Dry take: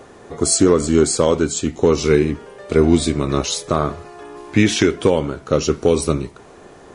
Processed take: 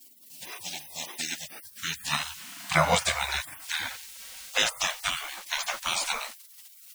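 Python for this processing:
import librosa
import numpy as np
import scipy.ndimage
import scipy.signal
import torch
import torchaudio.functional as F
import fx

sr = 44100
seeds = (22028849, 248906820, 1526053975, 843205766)

y = fx.quant_dither(x, sr, seeds[0], bits=8, dither='none')
y = fx.filter_sweep_highpass(y, sr, from_hz=1400.0, to_hz=72.0, start_s=1.07, end_s=4.89, q=3.4)
y = fx.spec_gate(y, sr, threshold_db=-30, keep='weak')
y = y * 10.0 ** (8.0 / 20.0)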